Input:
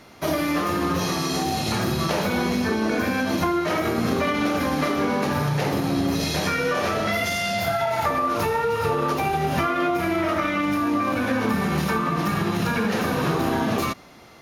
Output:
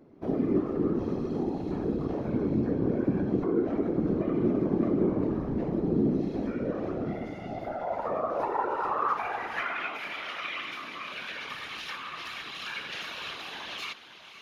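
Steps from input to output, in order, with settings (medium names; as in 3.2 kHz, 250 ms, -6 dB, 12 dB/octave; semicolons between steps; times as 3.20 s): band-pass sweep 290 Hz -> 3.1 kHz, 7.42–10.17 s; echo that smears into a reverb 550 ms, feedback 42%, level -12.5 dB; whisper effect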